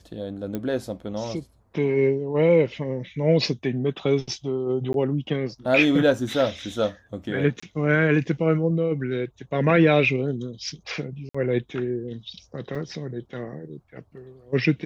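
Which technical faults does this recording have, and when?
0.55 s: pop -17 dBFS
4.93–4.94 s: dropout 12 ms
7.60–7.62 s: dropout 25 ms
11.29–11.35 s: dropout 55 ms
12.75 s: dropout 2.2 ms

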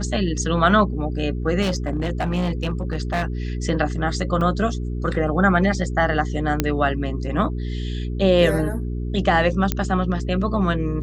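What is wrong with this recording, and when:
hum 60 Hz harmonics 7 -26 dBFS
1.61–3.23 s: clipped -17.5 dBFS
4.41 s: dropout 3.9 ms
6.60 s: pop -4 dBFS
9.72 s: pop -5 dBFS

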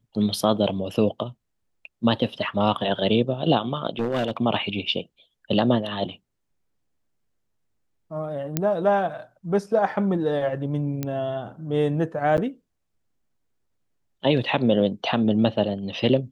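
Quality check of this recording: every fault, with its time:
3.99–4.37 s: clipped -19.5 dBFS
8.57 s: pop -7 dBFS
11.03 s: pop -13 dBFS
12.37–12.38 s: dropout 9.1 ms

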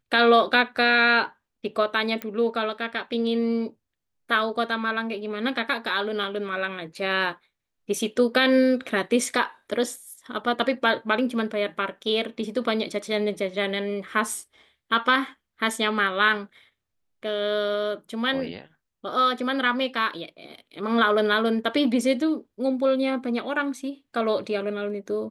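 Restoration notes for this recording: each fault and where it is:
2.22 s: pop -15 dBFS

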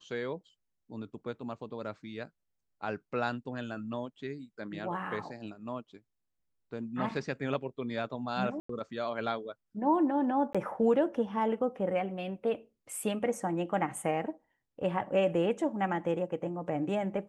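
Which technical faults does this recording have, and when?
8.60–8.69 s: dropout 94 ms
10.53–10.55 s: dropout 16 ms

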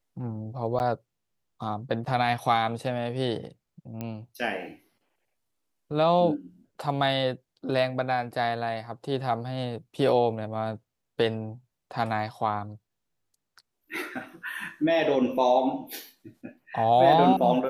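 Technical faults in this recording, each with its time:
0.79–0.80 s: dropout 9.6 ms
4.01 s: pop -20 dBFS

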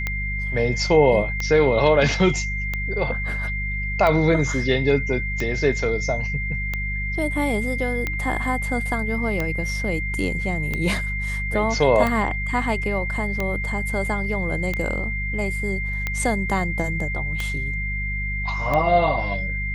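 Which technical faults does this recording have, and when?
hum 50 Hz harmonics 4 -28 dBFS
tick 45 rpm -11 dBFS
whine 2.1 kHz -27 dBFS

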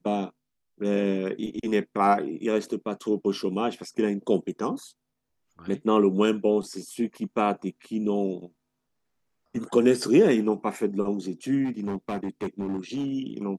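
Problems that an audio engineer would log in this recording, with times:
11.64–13.13 s: clipped -25 dBFS

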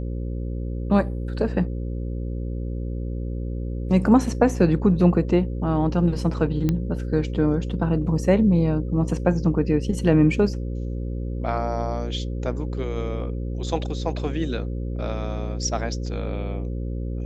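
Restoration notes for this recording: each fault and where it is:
buzz 60 Hz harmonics 9 -28 dBFS
6.69 s: pop -11 dBFS

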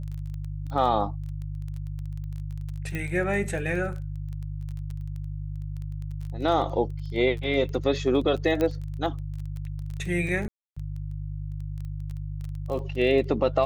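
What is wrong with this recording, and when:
crackle 16 per s -33 dBFS
hum 50 Hz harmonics 3 -33 dBFS
2.95 s: pop -19 dBFS
8.61 s: pop -14 dBFS
10.48–10.77 s: dropout 285 ms

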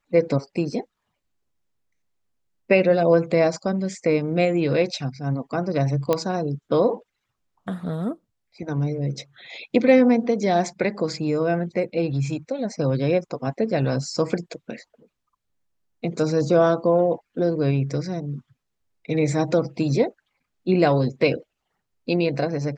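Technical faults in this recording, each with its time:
6.13 s: pop -8 dBFS

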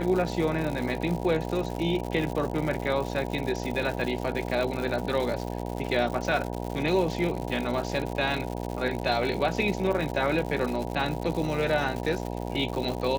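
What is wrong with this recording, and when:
buzz 60 Hz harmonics 16 -33 dBFS
crackle 170 per s -31 dBFS

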